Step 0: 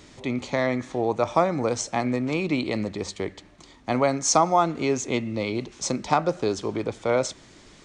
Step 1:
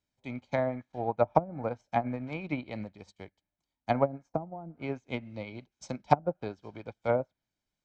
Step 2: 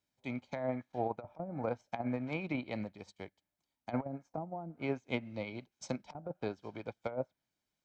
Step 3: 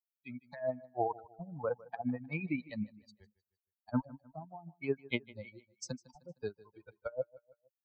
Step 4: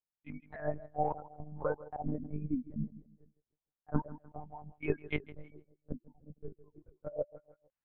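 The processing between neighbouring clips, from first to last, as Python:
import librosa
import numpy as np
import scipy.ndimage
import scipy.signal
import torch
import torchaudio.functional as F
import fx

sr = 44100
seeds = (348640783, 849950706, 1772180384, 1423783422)

y1 = x + 0.49 * np.pad(x, (int(1.3 * sr / 1000.0), 0))[:len(x)]
y1 = fx.env_lowpass_down(y1, sr, base_hz=340.0, full_db=-15.5)
y1 = fx.upward_expand(y1, sr, threshold_db=-45.0, expansion=2.5)
y1 = y1 * 10.0 ** (1.5 / 20.0)
y2 = fx.low_shelf(y1, sr, hz=66.0, db=-12.0)
y2 = fx.over_compress(y2, sr, threshold_db=-31.0, ratio=-0.5)
y2 = y2 * 10.0 ** (-3.0 / 20.0)
y3 = fx.bin_expand(y2, sr, power=3.0)
y3 = fx.echo_feedback(y3, sr, ms=154, feedback_pct=42, wet_db=-20.5)
y3 = y3 * 10.0 ** (6.5 / 20.0)
y4 = fx.transient(y3, sr, attack_db=1, sustain_db=5)
y4 = fx.filter_lfo_lowpass(y4, sr, shape='sine', hz=0.27, low_hz=300.0, high_hz=2900.0, q=1.0)
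y4 = fx.lpc_monotone(y4, sr, seeds[0], pitch_hz=150.0, order=8)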